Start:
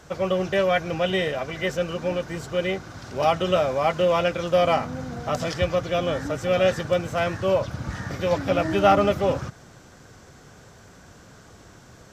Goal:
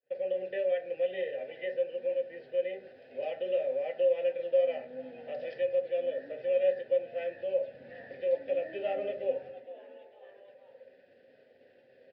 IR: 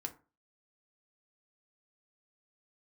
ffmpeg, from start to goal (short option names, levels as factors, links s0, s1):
-filter_complex "[0:a]highpass=100,equalizer=f=1300:t=o:w=0.43:g=-9.5,agate=range=0.0224:threshold=0.0126:ratio=3:detection=peak,asplit=4[s0][s1][s2][s3];[s1]adelay=458,afreqshift=130,volume=0.106[s4];[s2]adelay=916,afreqshift=260,volume=0.0437[s5];[s3]adelay=1374,afreqshift=390,volume=0.0178[s6];[s0][s4][s5][s6]amix=inputs=4:normalize=0[s7];[1:a]atrim=start_sample=2205,asetrate=37485,aresample=44100[s8];[s7][s8]afir=irnorm=-1:irlink=0,areverse,acompressor=mode=upward:threshold=0.0282:ratio=2.5,areverse,asplit=3[s9][s10][s11];[s9]bandpass=f=530:t=q:w=8,volume=1[s12];[s10]bandpass=f=1840:t=q:w=8,volume=0.501[s13];[s11]bandpass=f=2480:t=q:w=8,volume=0.355[s14];[s12][s13][s14]amix=inputs=3:normalize=0,asplit=2[s15][s16];[s16]acompressor=threshold=0.0178:ratio=6,volume=0.841[s17];[s15][s17]amix=inputs=2:normalize=0,aresample=11025,aresample=44100,volume=0.531"